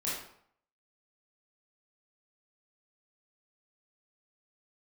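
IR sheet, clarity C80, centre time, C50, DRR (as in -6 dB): 5.5 dB, 57 ms, 0.5 dB, -8.0 dB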